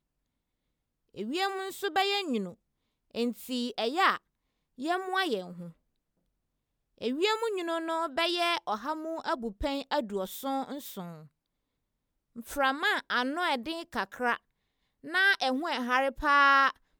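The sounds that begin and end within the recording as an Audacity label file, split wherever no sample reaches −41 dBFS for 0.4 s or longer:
1.160000	2.530000	sound
3.150000	4.170000	sound
4.790000	5.700000	sound
7.010000	11.210000	sound
12.360000	14.360000	sound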